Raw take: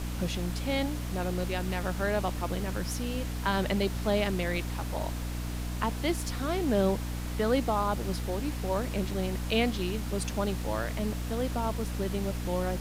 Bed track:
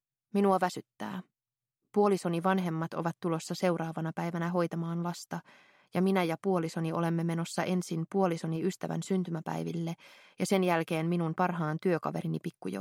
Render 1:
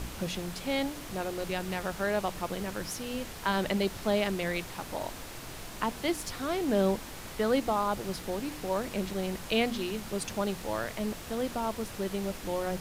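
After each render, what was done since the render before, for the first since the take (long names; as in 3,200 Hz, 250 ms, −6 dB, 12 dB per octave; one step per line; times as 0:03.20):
hum removal 60 Hz, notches 5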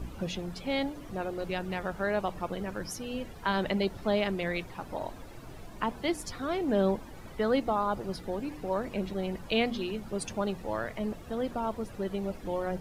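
broadband denoise 14 dB, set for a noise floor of −43 dBFS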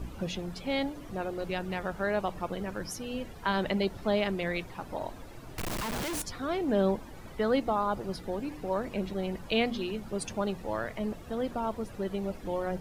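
0:05.58–0:06.22: sign of each sample alone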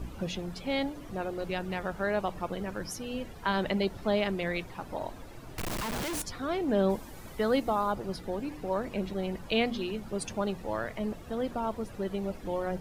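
0:06.89–0:07.91: high-shelf EQ 5,300 Hz → 8,200 Hz +10 dB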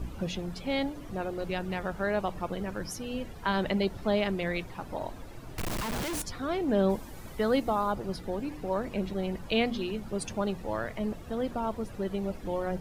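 low-shelf EQ 190 Hz +3 dB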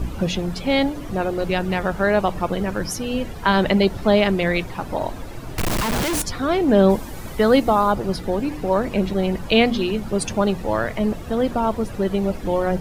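level +11 dB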